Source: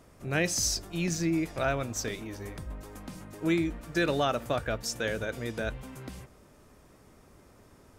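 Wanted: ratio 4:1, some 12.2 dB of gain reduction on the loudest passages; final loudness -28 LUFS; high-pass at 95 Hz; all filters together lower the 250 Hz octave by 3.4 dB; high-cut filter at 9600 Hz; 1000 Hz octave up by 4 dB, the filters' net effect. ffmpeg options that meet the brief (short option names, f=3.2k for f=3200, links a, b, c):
-af "highpass=95,lowpass=9.6k,equalizer=f=250:t=o:g=-6,equalizer=f=1k:t=o:g=6.5,acompressor=threshold=-36dB:ratio=4,volume=12dB"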